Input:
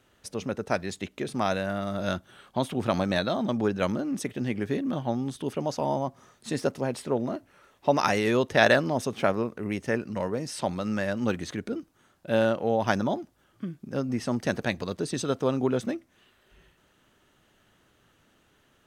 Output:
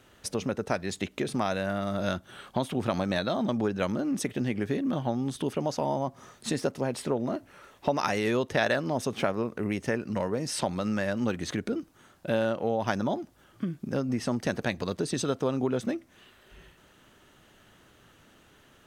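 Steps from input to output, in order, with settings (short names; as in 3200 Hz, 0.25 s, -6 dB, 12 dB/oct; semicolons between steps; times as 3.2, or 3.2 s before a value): compressor 2.5:1, threshold -34 dBFS, peak gain reduction 13 dB; gain +6 dB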